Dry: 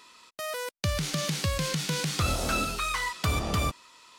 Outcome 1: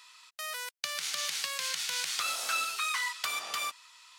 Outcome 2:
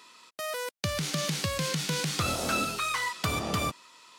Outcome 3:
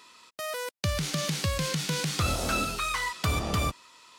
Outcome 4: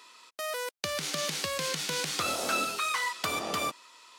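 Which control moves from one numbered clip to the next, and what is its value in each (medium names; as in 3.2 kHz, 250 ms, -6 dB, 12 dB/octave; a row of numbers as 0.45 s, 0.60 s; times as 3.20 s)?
high-pass, cutoff frequency: 1.3 kHz, 120 Hz, 40 Hz, 330 Hz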